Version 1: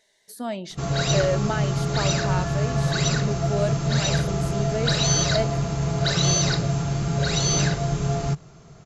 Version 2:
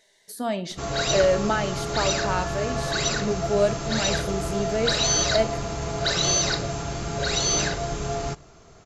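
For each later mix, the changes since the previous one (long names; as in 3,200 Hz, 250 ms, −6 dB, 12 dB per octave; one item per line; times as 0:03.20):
background: add parametric band 150 Hz −13 dB 0.74 octaves
reverb: on, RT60 0.50 s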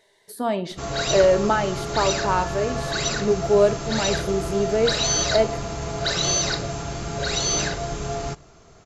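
speech: add graphic EQ with 15 bands 100 Hz +9 dB, 400 Hz +7 dB, 1,000 Hz +7 dB, 6,300 Hz −6 dB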